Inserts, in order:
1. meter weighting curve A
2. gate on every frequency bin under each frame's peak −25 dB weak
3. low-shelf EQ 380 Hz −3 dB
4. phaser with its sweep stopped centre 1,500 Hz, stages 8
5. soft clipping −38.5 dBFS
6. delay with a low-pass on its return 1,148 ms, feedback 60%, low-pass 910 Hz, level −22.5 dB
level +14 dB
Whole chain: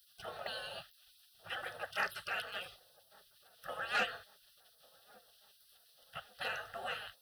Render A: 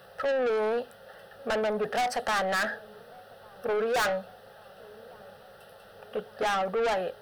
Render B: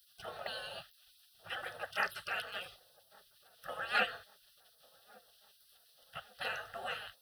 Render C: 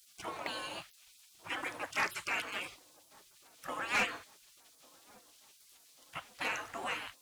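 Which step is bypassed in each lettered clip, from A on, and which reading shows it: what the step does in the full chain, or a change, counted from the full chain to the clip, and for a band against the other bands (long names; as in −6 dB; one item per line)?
2, 4 kHz band −9.0 dB
5, distortion level −16 dB
4, 250 Hz band +7.0 dB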